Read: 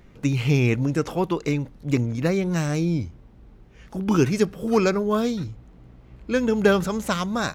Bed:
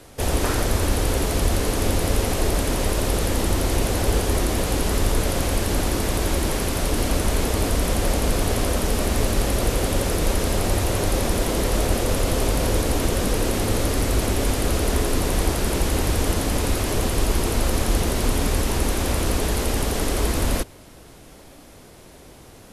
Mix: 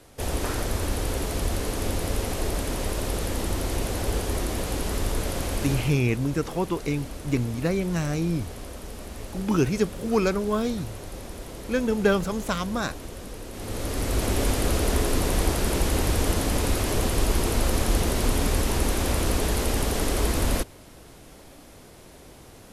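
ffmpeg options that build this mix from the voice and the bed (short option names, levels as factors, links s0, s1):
-filter_complex "[0:a]adelay=5400,volume=0.708[s0];[1:a]volume=2.66,afade=t=out:st=5.71:d=0.31:silence=0.298538,afade=t=in:st=13.51:d=0.87:silence=0.188365[s1];[s0][s1]amix=inputs=2:normalize=0"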